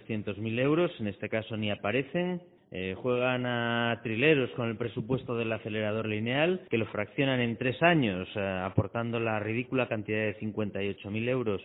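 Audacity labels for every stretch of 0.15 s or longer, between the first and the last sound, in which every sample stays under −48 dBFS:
2.470000	2.720000	silence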